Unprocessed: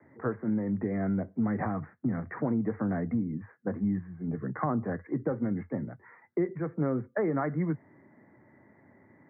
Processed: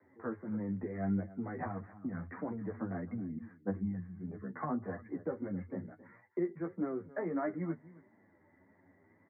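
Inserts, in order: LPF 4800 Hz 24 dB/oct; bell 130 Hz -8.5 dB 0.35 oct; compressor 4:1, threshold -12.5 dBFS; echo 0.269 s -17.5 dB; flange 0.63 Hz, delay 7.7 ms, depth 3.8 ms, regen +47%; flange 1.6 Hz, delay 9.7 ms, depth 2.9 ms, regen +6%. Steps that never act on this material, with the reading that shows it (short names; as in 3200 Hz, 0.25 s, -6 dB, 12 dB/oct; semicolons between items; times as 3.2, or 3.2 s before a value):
LPF 4800 Hz: input band ends at 1800 Hz; compressor, threshold -12.5 dBFS: input peak -15.0 dBFS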